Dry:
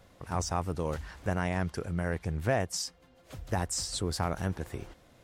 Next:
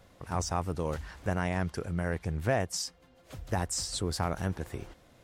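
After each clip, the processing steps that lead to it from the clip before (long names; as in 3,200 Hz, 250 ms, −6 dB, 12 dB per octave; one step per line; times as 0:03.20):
no processing that can be heard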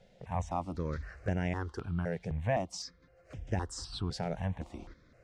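high-frequency loss of the air 110 metres
step-sequenced phaser 3.9 Hz 300–4,200 Hz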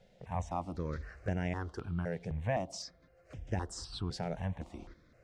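on a send at −16.5 dB: flat-topped band-pass 410 Hz, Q 0.73 + convolution reverb RT60 0.90 s, pre-delay 6 ms
on the sum: level −2 dB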